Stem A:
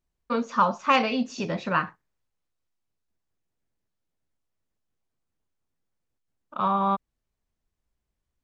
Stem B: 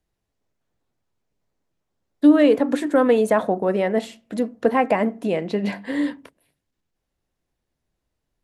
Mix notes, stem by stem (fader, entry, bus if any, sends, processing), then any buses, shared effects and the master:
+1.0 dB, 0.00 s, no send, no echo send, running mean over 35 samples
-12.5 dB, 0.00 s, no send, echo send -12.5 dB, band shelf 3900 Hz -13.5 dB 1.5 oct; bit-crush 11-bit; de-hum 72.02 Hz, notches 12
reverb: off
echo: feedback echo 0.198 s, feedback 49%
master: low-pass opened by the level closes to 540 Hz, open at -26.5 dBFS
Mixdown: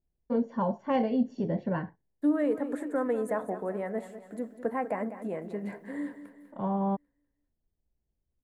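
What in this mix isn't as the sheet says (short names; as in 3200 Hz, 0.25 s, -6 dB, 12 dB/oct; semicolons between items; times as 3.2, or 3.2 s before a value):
stem B: missing de-hum 72.02 Hz, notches 12; master: missing low-pass opened by the level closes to 540 Hz, open at -26.5 dBFS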